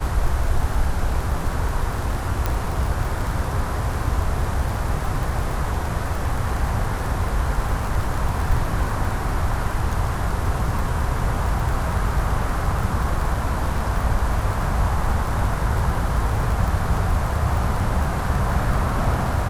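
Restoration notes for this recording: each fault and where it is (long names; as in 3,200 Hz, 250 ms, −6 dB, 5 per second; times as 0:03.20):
surface crackle 31 per second −25 dBFS
0:02.46: click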